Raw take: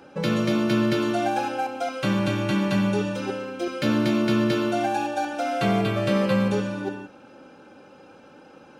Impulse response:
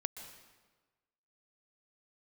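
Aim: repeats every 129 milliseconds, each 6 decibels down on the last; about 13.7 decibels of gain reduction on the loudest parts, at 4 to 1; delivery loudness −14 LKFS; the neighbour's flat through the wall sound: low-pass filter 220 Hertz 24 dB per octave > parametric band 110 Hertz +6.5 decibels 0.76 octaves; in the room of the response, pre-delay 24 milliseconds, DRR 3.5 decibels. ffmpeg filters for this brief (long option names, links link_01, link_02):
-filter_complex "[0:a]acompressor=threshold=-35dB:ratio=4,aecho=1:1:129|258|387|516|645|774:0.501|0.251|0.125|0.0626|0.0313|0.0157,asplit=2[link_01][link_02];[1:a]atrim=start_sample=2205,adelay=24[link_03];[link_02][link_03]afir=irnorm=-1:irlink=0,volume=-3dB[link_04];[link_01][link_04]amix=inputs=2:normalize=0,lowpass=frequency=220:width=0.5412,lowpass=frequency=220:width=1.3066,equalizer=frequency=110:width_type=o:width=0.76:gain=6.5,volume=24dB"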